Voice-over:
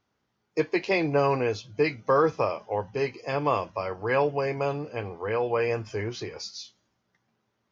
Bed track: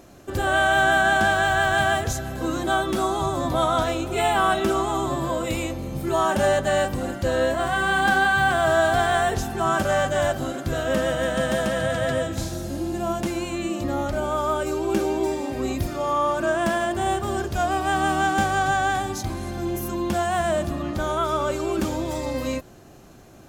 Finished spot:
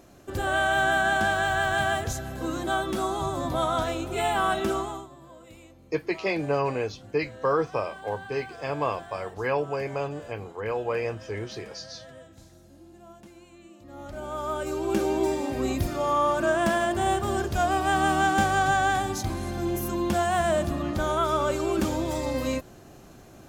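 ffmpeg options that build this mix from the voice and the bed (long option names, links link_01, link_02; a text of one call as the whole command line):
ffmpeg -i stem1.wav -i stem2.wav -filter_complex "[0:a]adelay=5350,volume=-2.5dB[link_01];[1:a]volume=17.5dB,afade=type=out:start_time=4.73:duration=0.35:silence=0.11885,afade=type=in:start_time=13.85:duration=1.35:silence=0.0794328[link_02];[link_01][link_02]amix=inputs=2:normalize=0" out.wav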